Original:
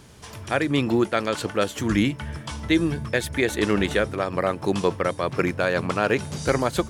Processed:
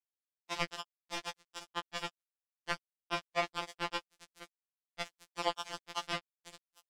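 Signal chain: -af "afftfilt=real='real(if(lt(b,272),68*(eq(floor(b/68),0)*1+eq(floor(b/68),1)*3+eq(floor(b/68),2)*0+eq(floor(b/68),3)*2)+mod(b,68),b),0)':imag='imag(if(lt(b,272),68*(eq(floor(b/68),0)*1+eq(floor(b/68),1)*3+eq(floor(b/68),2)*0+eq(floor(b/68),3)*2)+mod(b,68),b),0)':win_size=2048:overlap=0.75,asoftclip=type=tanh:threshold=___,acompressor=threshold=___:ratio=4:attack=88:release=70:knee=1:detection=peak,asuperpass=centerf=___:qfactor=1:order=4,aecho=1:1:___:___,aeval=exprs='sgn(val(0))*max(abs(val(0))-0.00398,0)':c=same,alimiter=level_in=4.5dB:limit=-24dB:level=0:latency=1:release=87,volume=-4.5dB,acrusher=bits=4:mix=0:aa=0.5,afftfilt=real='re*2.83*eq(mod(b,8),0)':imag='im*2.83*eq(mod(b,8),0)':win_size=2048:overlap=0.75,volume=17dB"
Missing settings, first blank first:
-14.5dB, -31dB, 820, 162, 0.0668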